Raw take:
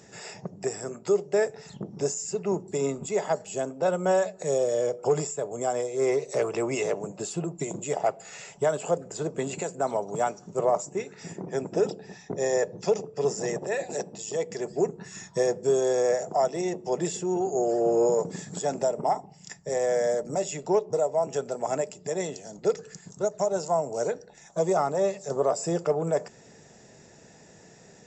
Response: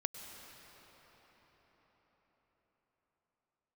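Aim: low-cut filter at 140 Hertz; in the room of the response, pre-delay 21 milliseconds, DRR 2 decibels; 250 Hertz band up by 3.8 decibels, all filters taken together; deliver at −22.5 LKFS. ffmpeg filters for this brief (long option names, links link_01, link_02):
-filter_complex "[0:a]highpass=140,equalizer=frequency=250:width_type=o:gain=7,asplit=2[link_01][link_02];[1:a]atrim=start_sample=2205,adelay=21[link_03];[link_02][link_03]afir=irnorm=-1:irlink=0,volume=-2.5dB[link_04];[link_01][link_04]amix=inputs=2:normalize=0,volume=2dB"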